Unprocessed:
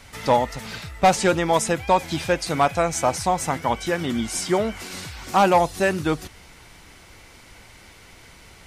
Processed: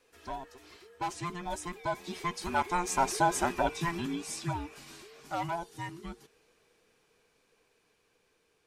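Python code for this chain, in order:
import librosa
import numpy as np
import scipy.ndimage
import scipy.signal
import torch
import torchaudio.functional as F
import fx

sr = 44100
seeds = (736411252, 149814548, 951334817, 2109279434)

y = fx.band_invert(x, sr, width_hz=500)
y = fx.doppler_pass(y, sr, speed_mps=7, closest_m=3.3, pass_at_s=3.34)
y = y * 10.0 ** (-4.5 / 20.0)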